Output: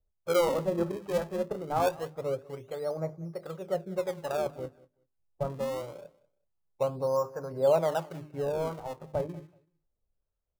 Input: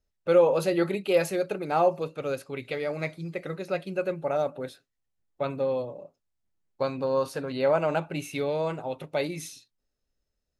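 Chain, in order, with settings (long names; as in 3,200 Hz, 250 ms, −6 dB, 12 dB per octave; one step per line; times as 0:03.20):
low-pass filter 1,200 Hz 24 dB per octave
parametric band 260 Hz −10 dB 0.84 octaves
mains-hum notches 50/100/150/200/250/300/350/400 Hz
in parallel at −9 dB: sample-and-hold swept by an LFO 35×, swing 160% 0.24 Hz
on the sum: two-band tremolo in antiphase 1.3 Hz, depth 50%, crossover 810 Hz
repeating echo 189 ms, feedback 20%, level −22 dB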